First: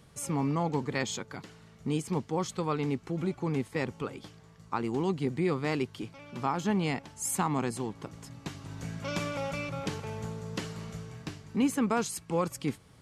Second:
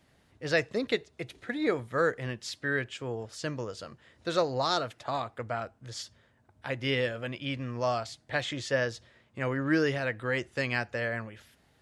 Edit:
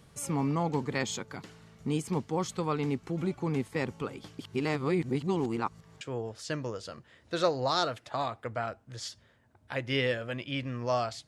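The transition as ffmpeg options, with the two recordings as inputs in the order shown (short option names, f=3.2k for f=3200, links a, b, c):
-filter_complex "[0:a]apad=whole_dur=11.27,atrim=end=11.27,asplit=2[a][b];[a]atrim=end=4.392[c];[b]atrim=start=4.388:end=6.012,asetpts=PTS-STARTPTS,areverse[d];[1:a]atrim=start=2.948:end=8.21[e];[c][d]acrossfade=d=0.004:c1=hsin:c2=hsin[f];[f][e]acrossfade=d=0.004:c1=hsin:c2=hsin"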